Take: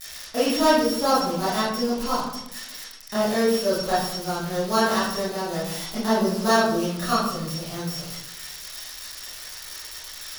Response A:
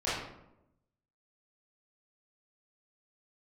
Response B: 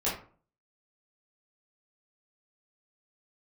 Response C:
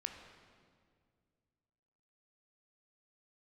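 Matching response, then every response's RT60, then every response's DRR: A; 0.85, 0.45, 2.1 s; -12.0, -9.5, 4.5 dB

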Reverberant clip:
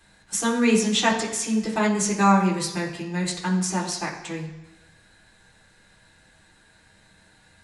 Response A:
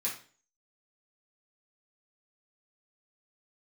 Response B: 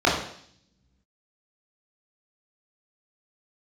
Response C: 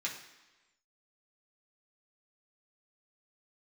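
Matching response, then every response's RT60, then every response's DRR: C; 0.40, 0.60, 1.1 s; -7.0, -6.5, -4.5 dB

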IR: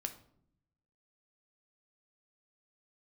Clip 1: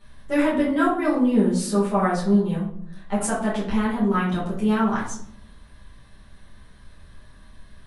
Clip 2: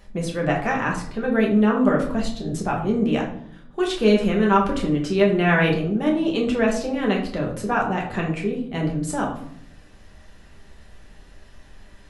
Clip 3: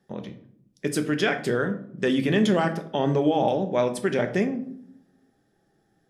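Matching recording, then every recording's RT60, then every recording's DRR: 3; 0.65, 0.65, 0.65 s; -9.5, -1.5, 6.5 dB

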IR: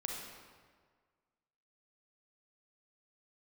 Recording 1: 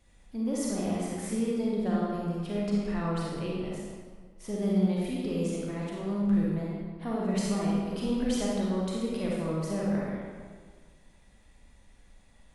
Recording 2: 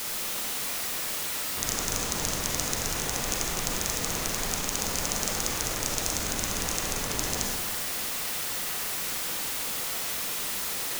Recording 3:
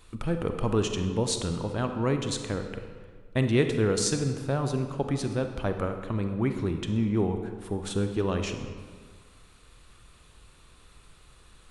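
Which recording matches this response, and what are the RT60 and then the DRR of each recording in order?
2; 1.7, 1.7, 1.7 s; -5.5, -0.5, 6.0 dB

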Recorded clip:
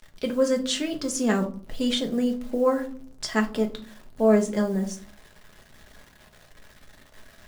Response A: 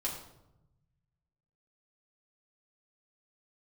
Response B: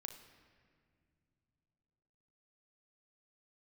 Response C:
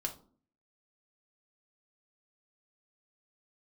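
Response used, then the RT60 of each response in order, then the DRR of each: C; 0.90 s, not exponential, 0.45 s; -5.0, 3.5, 2.5 dB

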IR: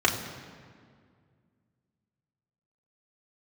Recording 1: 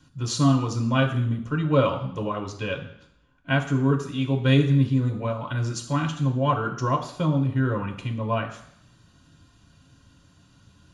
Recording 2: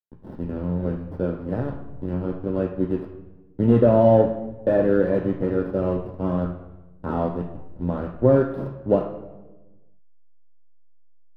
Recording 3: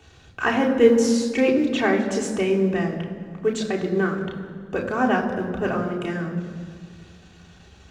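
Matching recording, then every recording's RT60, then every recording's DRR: 3; 0.70, 1.2, 2.0 s; 2.0, 3.0, -2.0 dB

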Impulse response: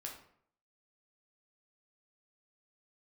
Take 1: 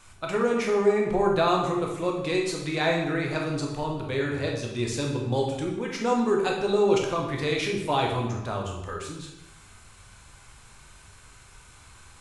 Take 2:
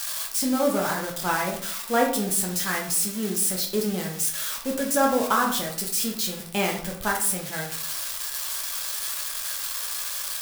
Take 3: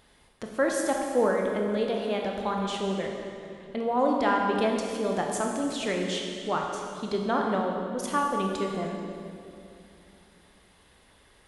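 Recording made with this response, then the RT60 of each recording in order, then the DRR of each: 2; 0.95, 0.65, 2.6 s; -0.5, -1.0, 0.5 dB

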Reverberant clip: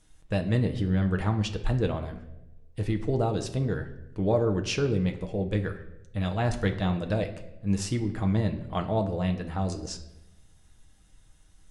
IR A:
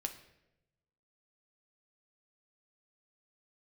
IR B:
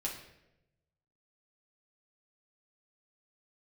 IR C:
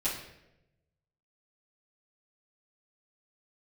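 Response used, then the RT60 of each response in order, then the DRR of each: A; 0.90, 0.90, 0.90 s; 4.5, -4.0, -12.5 dB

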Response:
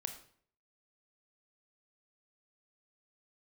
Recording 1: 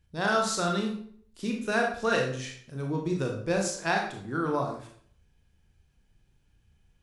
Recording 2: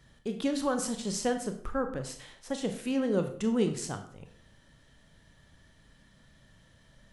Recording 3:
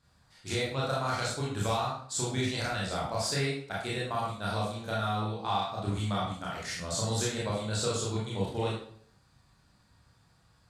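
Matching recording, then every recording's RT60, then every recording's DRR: 2; 0.55, 0.55, 0.55 s; 0.5, 6.0, -6.0 dB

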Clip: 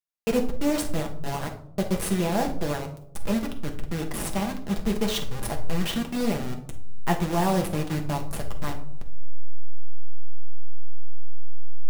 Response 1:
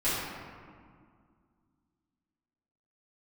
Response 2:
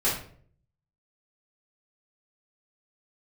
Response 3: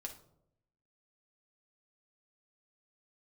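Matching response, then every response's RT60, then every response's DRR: 3; 2.0, 0.55, 0.75 s; -14.0, -10.0, 2.0 dB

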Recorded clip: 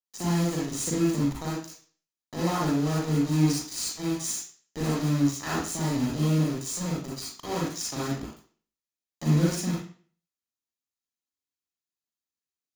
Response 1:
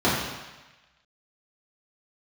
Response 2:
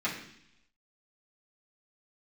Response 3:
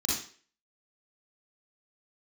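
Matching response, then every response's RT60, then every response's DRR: 3; 1.1, 0.70, 0.45 s; -9.5, -9.5, -6.5 dB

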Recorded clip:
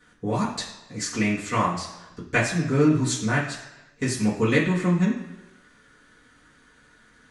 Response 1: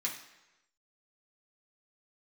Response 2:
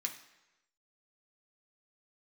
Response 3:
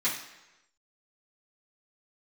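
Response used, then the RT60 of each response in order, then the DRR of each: 3; 1.0, 1.0, 1.0 s; -4.0, 1.5, -11.0 dB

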